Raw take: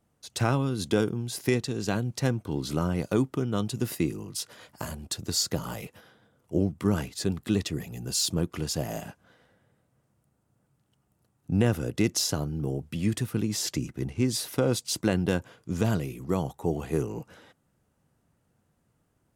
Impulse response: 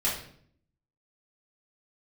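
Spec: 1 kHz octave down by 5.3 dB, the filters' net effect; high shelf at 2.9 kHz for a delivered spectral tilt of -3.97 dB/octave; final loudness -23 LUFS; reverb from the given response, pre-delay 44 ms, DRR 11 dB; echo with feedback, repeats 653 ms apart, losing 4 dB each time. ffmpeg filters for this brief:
-filter_complex "[0:a]equalizer=f=1000:t=o:g=-9,highshelf=f=2900:g=8.5,aecho=1:1:653|1306|1959|2612|3265|3918|4571|5224|5877:0.631|0.398|0.25|0.158|0.0994|0.0626|0.0394|0.0249|0.0157,asplit=2[s0][s1];[1:a]atrim=start_sample=2205,adelay=44[s2];[s1][s2]afir=irnorm=-1:irlink=0,volume=0.1[s3];[s0][s3]amix=inputs=2:normalize=0,volume=1.26"

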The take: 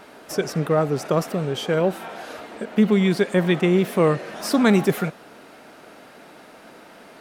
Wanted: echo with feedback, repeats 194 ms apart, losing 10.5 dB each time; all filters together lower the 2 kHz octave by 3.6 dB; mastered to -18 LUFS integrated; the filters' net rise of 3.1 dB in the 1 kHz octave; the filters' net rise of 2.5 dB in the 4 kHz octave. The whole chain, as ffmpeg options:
-af "equalizer=f=1000:t=o:g=6,equalizer=f=2000:t=o:g=-8,equalizer=f=4000:t=o:g=5.5,aecho=1:1:194|388|582:0.299|0.0896|0.0269,volume=1.33"

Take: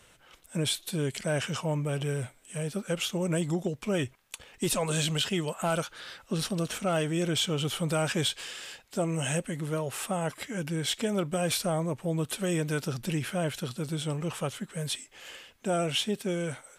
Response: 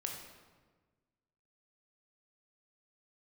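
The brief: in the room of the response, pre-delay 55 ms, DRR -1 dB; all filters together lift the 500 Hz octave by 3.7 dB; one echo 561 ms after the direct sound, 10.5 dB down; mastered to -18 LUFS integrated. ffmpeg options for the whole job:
-filter_complex "[0:a]equalizer=f=500:t=o:g=4.5,aecho=1:1:561:0.299,asplit=2[s0][s1];[1:a]atrim=start_sample=2205,adelay=55[s2];[s1][s2]afir=irnorm=-1:irlink=0,volume=1.12[s3];[s0][s3]amix=inputs=2:normalize=0,volume=2.24"

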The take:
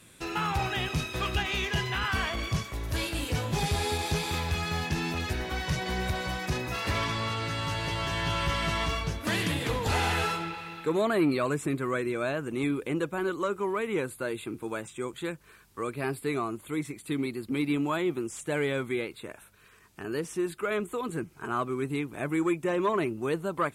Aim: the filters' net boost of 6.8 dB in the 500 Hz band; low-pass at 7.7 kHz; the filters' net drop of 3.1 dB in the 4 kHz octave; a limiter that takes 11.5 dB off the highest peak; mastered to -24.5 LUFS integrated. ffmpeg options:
-af "lowpass=7700,equalizer=f=500:t=o:g=9,equalizer=f=4000:t=o:g=-4,volume=2.11,alimiter=limit=0.168:level=0:latency=1"

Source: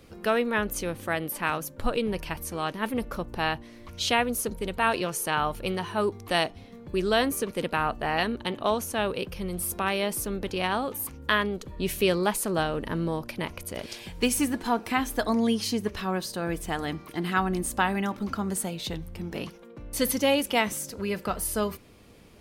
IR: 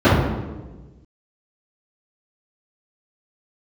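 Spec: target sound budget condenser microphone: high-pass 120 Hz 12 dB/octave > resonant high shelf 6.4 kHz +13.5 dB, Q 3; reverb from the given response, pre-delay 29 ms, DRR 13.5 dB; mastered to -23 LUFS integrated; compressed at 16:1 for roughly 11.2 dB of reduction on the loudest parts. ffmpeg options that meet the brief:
-filter_complex "[0:a]acompressor=threshold=0.0355:ratio=16,asplit=2[s0][s1];[1:a]atrim=start_sample=2205,adelay=29[s2];[s1][s2]afir=irnorm=-1:irlink=0,volume=0.00944[s3];[s0][s3]amix=inputs=2:normalize=0,highpass=120,highshelf=f=6400:t=q:w=3:g=13.5,volume=0.841"

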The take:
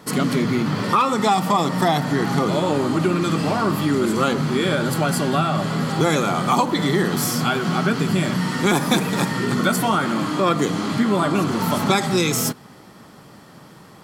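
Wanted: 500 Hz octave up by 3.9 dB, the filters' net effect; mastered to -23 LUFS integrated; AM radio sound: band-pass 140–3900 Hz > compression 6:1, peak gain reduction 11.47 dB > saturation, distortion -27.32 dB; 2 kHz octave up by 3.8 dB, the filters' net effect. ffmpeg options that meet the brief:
-af "highpass=140,lowpass=3900,equalizer=f=500:t=o:g=5,equalizer=f=2000:t=o:g=5,acompressor=threshold=0.0794:ratio=6,asoftclip=threshold=0.237,volume=1.41"

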